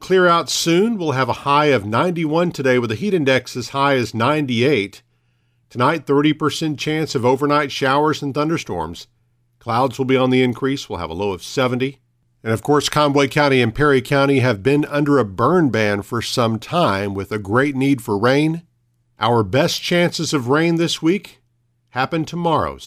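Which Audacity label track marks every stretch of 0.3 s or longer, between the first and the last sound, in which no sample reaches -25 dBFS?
4.930000	5.750000	silence
9.010000	9.670000	silence
11.900000	12.460000	silence
18.580000	19.210000	silence
21.250000	21.960000	silence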